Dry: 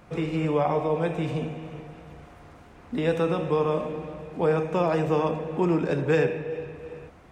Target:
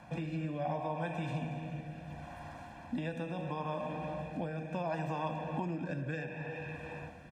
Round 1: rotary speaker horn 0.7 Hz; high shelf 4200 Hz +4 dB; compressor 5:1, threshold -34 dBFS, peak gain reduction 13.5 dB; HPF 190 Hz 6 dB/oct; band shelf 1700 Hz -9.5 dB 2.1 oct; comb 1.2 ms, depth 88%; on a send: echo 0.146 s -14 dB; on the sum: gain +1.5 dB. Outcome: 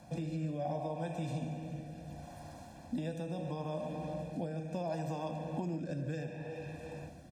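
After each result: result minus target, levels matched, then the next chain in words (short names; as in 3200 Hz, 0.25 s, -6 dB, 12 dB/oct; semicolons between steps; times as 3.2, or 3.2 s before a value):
echo 87 ms early; 2000 Hz band -7.5 dB; 8000 Hz band +7.0 dB
rotary speaker horn 0.7 Hz; high shelf 4200 Hz +4 dB; compressor 5:1, threshold -34 dBFS, peak gain reduction 13.5 dB; HPF 190 Hz 6 dB/oct; band shelf 1700 Hz -9.5 dB 2.1 oct; comb 1.2 ms, depth 88%; on a send: echo 0.233 s -14 dB; on the sum: gain +1.5 dB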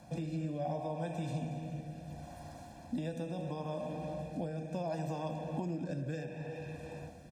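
2000 Hz band -7.0 dB; 8000 Hz band +7.0 dB
rotary speaker horn 0.7 Hz; high shelf 4200 Hz +4 dB; compressor 5:1, threshold -34 dBFS, peak gain reduction 13.5 dB; HPF 190 Hz 6 dB/oct; comb 1.2 ms, depth 88%; on a send: echo 0.233 s -14 dB; on the sum: gain +1.5 dB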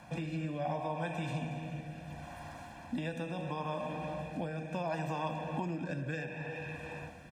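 8000 Hz band +6.0 dB
rotary speaker horn 0.7 Hz; high shelf 4200 Hz -4 dB; compressor 5:1, threshold -34 dBFS, peak gain reduction 13.5 dB; HPF 190 Hz 6 dB/oct; comb 1.2 ms, depth 88%; on a send: echo 0.233 s -14 dB; on the sum: gain +1.5 dB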